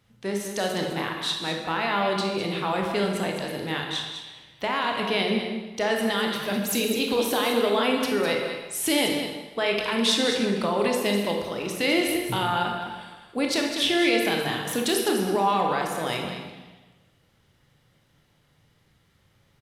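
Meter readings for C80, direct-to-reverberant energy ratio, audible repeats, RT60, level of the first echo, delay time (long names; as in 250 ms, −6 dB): 4.0 dB, 0.5 dB, 1, 1.2 s, −8.5 dB, 205 ms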